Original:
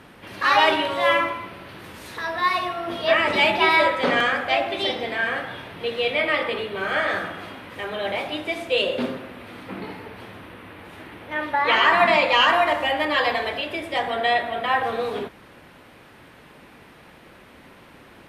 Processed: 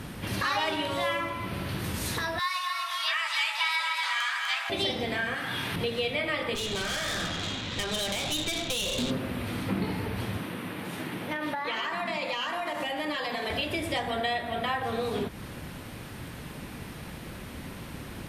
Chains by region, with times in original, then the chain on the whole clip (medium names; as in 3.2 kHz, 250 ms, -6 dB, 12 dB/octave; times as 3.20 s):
2.39–4.70 s: steep high-pass 970 Hz + peaking EQ 6.6 kHz +4.5 dB 0.9 oct + echo whose repeats swap between lows and highs 124 ms, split 1 kHz, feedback 71%, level -3.5 dB
5.34–5.76 s: high-pass 380 Hz 6 dB/octave + peaking EQ 580 Hz -8.5 dB 0.89 oct + level flattener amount 50%
6.55–9.11 s: resonant low-pass 3.8 kHz, resonance Q 5.3 + compression 10:1, threshold -21 dBFS + valve stage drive 28 dB, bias 0.65
10.38–13.50 s: high-pass 140 Hz 24 dB/octave + compression 4:1, threshold -27 dBFS
whole clip: compression 3:1, threshold -34 dBFS; tone controls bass +12 dB, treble +10 dB; trim +2.5 dB